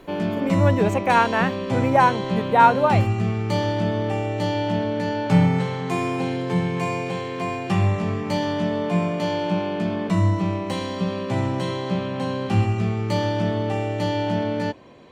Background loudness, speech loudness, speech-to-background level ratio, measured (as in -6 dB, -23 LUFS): -24.0 LUFS, -20.5 LUFS, 3.5 dB